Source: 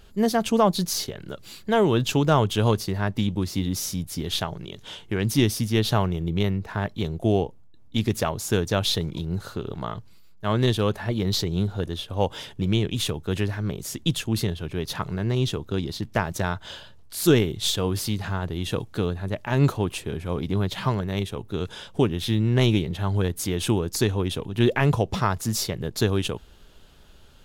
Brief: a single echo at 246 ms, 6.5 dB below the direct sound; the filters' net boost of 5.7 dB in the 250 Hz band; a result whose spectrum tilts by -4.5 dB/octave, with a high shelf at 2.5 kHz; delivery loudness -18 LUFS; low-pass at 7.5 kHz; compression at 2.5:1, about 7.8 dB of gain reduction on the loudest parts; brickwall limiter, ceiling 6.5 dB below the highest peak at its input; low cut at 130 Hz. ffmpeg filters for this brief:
-af "highpass=130,lowpass=7500,equalizer=f=250:t=o:g=8,highshelf=f=2500:g=7,acompressor=threshold=0.0891:ratio=2.5,alimiter=limit=0.188:level=0:latency=1,aecho=1:1:246:0.473,volume=2.66"

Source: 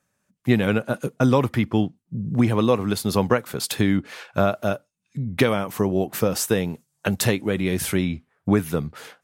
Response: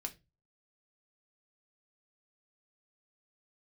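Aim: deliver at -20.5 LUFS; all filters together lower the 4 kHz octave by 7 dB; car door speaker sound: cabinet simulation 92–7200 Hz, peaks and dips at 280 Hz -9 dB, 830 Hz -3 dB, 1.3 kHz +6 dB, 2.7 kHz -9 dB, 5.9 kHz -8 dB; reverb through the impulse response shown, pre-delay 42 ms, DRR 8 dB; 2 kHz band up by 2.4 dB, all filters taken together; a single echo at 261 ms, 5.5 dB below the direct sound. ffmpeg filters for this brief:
-filter_complex "[0:a]equalizer=f=2000:t=o:g=4.5,equalizer=f=4000:t=o:g=-6.5,aecho=1:1:261:0.531,asplit=2[s0][s1];[1:a]atrim=start_sample=2205,adelay=42[s2];[s1][s2]afir=irnorm=-1:irlink=0,volume=0.501[s3];[s0][s3]amix=inputs=2:normalize=0,highpass=92,equalizer=f=280:t=q:w=4:g=-9,equalizer=f=830:t=q:w=4:g=-3,equalizer=f=1300:t=q:w=4:g=6,equalizer=f=2700:t=q:w=4:g=-9,equalizer=f=5900:t=q:w=4:g=-8,lowpass=f=7200:w=0.5412,lowpass=f=7200:w=1.3066,volume=1.26"

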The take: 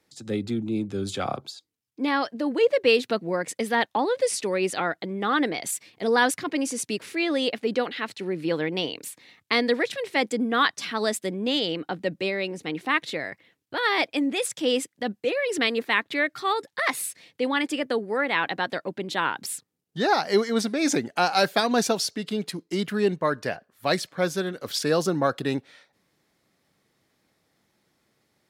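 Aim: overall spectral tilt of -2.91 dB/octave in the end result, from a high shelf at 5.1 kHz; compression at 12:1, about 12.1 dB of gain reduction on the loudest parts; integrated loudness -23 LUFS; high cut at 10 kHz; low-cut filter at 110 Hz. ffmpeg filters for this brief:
-af "highpass=110,lowpass=10000,highshelf=f=5100:g=7.5,acompressor=threshold=0.0447:ratio=12,volume=2.82"

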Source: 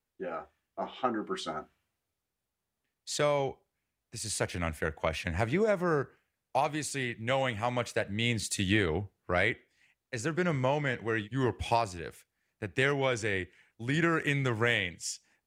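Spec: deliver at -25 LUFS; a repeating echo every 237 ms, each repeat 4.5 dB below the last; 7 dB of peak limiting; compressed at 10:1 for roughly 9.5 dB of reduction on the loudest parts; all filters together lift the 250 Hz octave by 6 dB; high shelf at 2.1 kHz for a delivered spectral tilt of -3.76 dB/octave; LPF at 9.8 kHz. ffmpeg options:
-af "lowpass=9800,equalizer=f=250:t=o:g=8,highshelf=f=2100:g=8,acompressor=threshold=0.0398:ratio=10,alimiter=limit=0.0841:level=0:latency=1,aecho=1:1:237|474|711|948|1185|1422|1659|1896|2133:0.596|0.357|0.214|0.129|0.0772|0.0463|0.0278|0.0167|0.01,volume=2.66"

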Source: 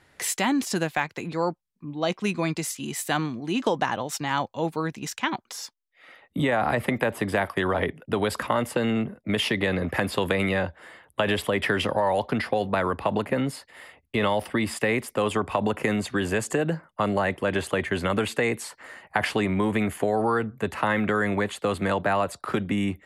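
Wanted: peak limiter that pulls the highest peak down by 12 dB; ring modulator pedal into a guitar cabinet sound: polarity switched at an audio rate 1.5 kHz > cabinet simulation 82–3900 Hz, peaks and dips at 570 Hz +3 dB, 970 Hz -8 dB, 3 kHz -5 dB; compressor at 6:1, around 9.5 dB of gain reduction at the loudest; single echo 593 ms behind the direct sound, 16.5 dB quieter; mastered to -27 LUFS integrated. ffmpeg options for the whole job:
-af "acompressor=threshold=0.0282:ratio=6,alimiter=level_in=1.41:limit=0.0631:level=0:latency=1,volume=0.708,aecho=1:1:593:0.15,aeval=exprs='val(0)*sgn(sin(2*PI*1500*n/s))':c=same,highpass=82,equalizer=f=570:t=q:w=4:g=3,equalizer=f=970:t=q:w=4:g=-8,equalizer=f=3000:t=q:w=4:g=-5,lowpass=f=3900:w=0.5412,lowpass=f=3900:w=1.3066,volume=3.76"

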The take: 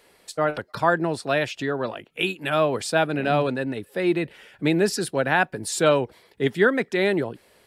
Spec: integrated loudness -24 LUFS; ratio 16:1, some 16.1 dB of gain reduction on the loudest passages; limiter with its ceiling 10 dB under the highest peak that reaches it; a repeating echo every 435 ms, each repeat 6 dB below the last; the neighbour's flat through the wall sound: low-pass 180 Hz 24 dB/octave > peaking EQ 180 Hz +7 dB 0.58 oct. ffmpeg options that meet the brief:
-af "acompressor=threshold=0.0355:ratio=16,alimiter=level_in=1.19:limit=0.0631:level=0:latency=1,volume=0.841,lowpass=f=180:w=0.5412,lowpass=f=180:w=1.3066,equalizer=f=180:t=o:w=0.58:g=7,aecho=1:1:435|870|1305|1740|2175|2610:0.501|0.251|0.125|0.0626|0.0313|0.0157,volume=8.91"

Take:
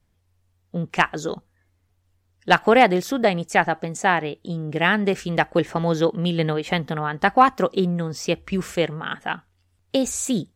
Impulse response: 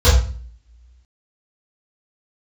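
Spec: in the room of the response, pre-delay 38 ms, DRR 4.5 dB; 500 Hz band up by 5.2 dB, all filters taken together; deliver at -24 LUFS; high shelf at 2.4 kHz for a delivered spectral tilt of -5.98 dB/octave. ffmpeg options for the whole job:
-filter_complex "[0:a]equalizer=f=500:t=o:g=6.5,highshelf=f=2400:g=-8,asplit=2[s0][s1];[1:a]atrim=start_sample=2205,adelay=38[s2];[s1][s2]afir=irnorm=-1:irlink=0,volume=0.0398[s3];[s0][s3]amix=inputs=2:normalize=0,volume=0.376"

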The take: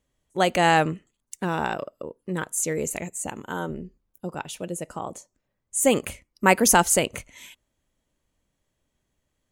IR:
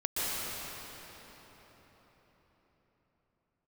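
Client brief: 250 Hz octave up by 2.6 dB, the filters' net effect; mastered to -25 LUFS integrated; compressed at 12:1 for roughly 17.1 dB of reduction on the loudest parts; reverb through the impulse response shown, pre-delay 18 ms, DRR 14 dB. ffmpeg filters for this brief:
-filter_complex "[0:a]equalizer=f=250:t=o:g=3.5,acompressor=threshold=0.0355:ratio=12,asplit=2[s0][s1];[1:a]atrim=start_sample=2205,adelay=18[s2];[s1][s2]afir=irnorm=-1:irlink=0,volume=0.0668[s3];[s0][s3]amix=inputs=2:normalize=0,volume=3.35"

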